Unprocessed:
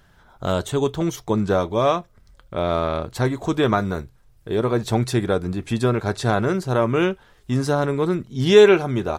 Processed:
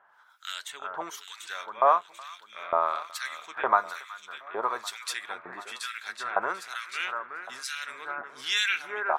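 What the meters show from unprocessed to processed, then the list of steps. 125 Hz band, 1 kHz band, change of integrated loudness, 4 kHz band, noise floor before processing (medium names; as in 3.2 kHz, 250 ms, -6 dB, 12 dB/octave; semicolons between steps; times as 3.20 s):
under -40 dB, -1.5 dB, -9.5 dB, -3.0 dB, -55 dBFS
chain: LFO high-pass saw up 1.1 Hz 860–2500 Hz; echo whose repeats swap between lows and highs 370 ms, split 1.8 kHz, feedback 64%, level -6 dB; harmonic tremolo 1.1 Hz, depth 100%, crossover 1.9 kHz; trim -1.5 dB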